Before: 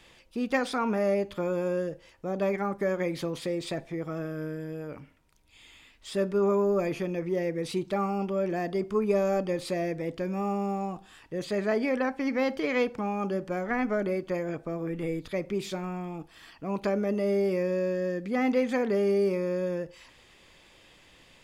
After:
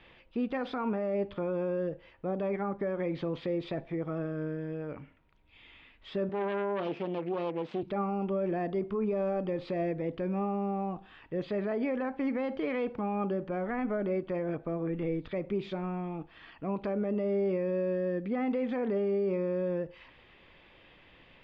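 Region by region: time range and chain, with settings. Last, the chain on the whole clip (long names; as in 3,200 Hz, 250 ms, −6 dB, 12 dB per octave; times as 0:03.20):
0:06.29–0:07.83: phase distortion by the signal itself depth 0.56 ms + band-pass filter 200–7,700 Hz
whole clip: low-pass filter 3,200 Hz 24 dB per octave; dynamic equaliser 2,100 Hz, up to −5 dB, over −48 dBFS, Q 1; brickwall limiter −23.5 dBFS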